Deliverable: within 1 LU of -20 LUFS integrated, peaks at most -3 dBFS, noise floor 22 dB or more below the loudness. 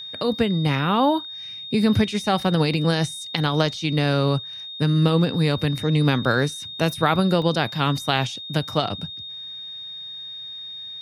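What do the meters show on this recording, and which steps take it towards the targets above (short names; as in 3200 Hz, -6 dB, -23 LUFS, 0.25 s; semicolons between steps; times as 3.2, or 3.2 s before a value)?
dropouts 1; longest dropout 1.6 ms; steady tone 3700 Hz; tone level -33 dBFS; loudness -22.0 LUFS; peak -3.5 dBFS; loudness target -20.0 LUFS
-> interpolate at 7.42, 1.6 ms; notch 3700 Hz, Q 30; gain +2 dB; limiter -3 dBFS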